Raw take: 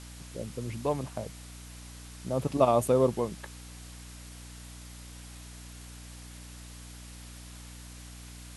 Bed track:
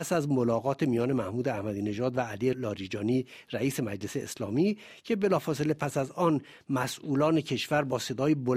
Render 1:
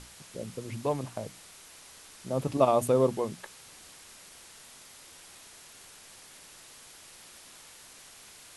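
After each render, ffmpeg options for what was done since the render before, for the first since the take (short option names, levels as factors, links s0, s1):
-af "bandreject=f=60:t=h:w=6,bandreject=f=120:t=h:w=6,bandreject=f=180:t=h:w=6,bandreject=f=240:t=h:w=6,bandreject=f=300:t=h:w=6"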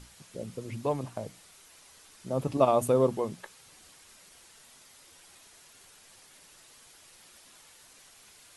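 -af "afftdn=nr=6:nf=-52"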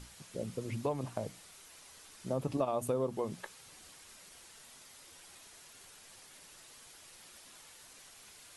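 -af "acompressor=threshold=0.0316:ratio=5"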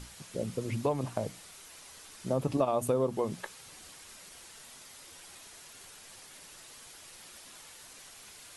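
-af "volume=1.68"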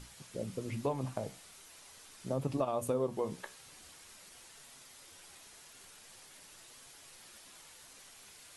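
-af "flanger=delay=7.1:depth=8.4:regen=74:speed=0.43:shape=sinusoidal"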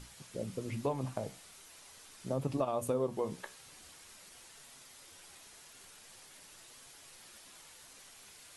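-af anull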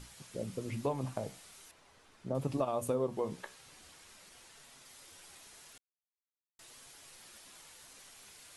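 -filter_complex "[0:a]asettb=1/sr,asplit=3[s0][s1][s2];[s0]atrim=end=1.714[s3];[s1]atrim=start=1.71:end=2.35,asetpts=PTS-STARTPTS,afade=t=in:d=0.004:c=qsin,afade=t=out:st=0.636:d=0.004:c=qsin,lowpass=f=1400:p=1[s4];[s2]atrim=start=2.346[s5];[s3][s4]acrossfade=d=0.004:c1=hsin:c2=qsin[s6];[s6][s5]acrossfade=d=0.004:c1=qsin:c2=hsin,asettb=1/sr,asplit=3[s7][s8][s9];[s7]atrim=end=2.954[s10];[s8]atrim=start=2.95:end=4.86,asetpts=PTS-STARTPTS,afade=t=in:d=0.004:c=qsin,afade=t=out:st=1.906:d=0.004:c=qsin,highshelf=f=6600:g=-5[s11];[s9]atrim=start=4.856[s12];[s10][s11]acrossfade=d=0.004:c1=hsin:c2=qsin[s13];[s13][s12]acrossfade=d=0.004:c1=qsin:c2=hsin,asplit=3[s14][s15][s16];[s14]atrim=end=5.78,asetpts=PTS-STARTPTS,afade=t=out:st=5.776:d=0.004:c=hsin[s17];[s15]atrim=start=5.78:end=6.59,asetpts=PTS-STARTPTS,volume=0[s18];[s16]atrim=start=6.59,asetpts=PTS-STARTPTS,afade=t=in:d=0.004:c=hsin[s19];[s17][s18][s19]concat=n=3:v=0:a=1"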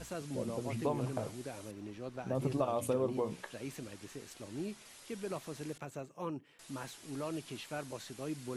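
-filter_complex "[1:a]volume=0.188[s0];[0:a][s0]amix=inputs=2:normalize=0"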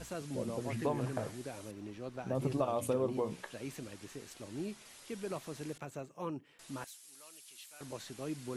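-filter_complex "[0:a]asettb=1/sr,asplit=3[s0][s1][s2];[s0]atrim=end=0.604[s3];[s1]atrim=start=0.6:end=1.38,asetpts=PTS-STARTPTS,afade=t=in:d=0.004:c=qsin,afade=t=out:st=0.776:d=0.004:c=qsin,equalizer=f=1700:w=4.4:g=9[s4];[s2]atrim=start=1.376[s5];[s3][s4]acrossfade=d=0.004:c1=hsin:c2=qsin[s6];[s6][s5]acrossfade=d=0.004:c1=qsin:c2=hsin,asettb=1/sr,asplit=3[s7][s8][s9];[s7]atrim=end=6.844[s10];[s8]atrim=start=6.84:end=7.81,asetpts=PTS-STARTPTS,afade=t=in:d=0.004:c=qsin,afade=t=out:st=0.966:d=0.004:c=qsin,aderivative[s11];[s9]atrim=start=7.806[s12];[s10][s11]acrossfade=d=0.004:c1=hsin:c2=qsin[s13];[s13][s12]acrossfade=d=0.004:c1=qsin:c2=hsin"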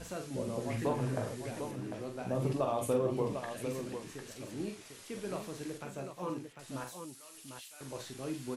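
-filter_complex "[0:a]asplit=2[s0][s1];[s1]adelay=16,volume=0.282[s2];[s0][s2]amix=inputs=2:normalize=0,aecho=1:1:44|84|749:0.501|0.15|0.422"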